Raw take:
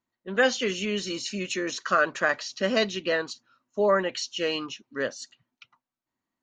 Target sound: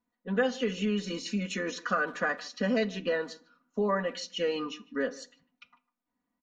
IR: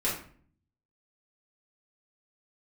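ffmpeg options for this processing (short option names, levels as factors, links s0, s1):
-filter_complex "[0:a]highshelf=f=2400:g=-11.5,aecho=1:1:4.1:0.92,acompressor=threshold=0.0316:ratio=2,asplit=2[s0][s1];[s1]adelay=150,highpass=300,lowpass=3400,asoftclip=type=hard:threshold=0.0531,volume=0.0891[s2];[s0][s2]amix=inputs=2:normalize=0,asplit=2[s3][s4];[1:a]atrim=start_sample=2205[s5];[s4][s5]afir=irnorm=-1:irlink=0,volume=0.0708[s6];[s3][s6]amix=inputs=2:normalize=0"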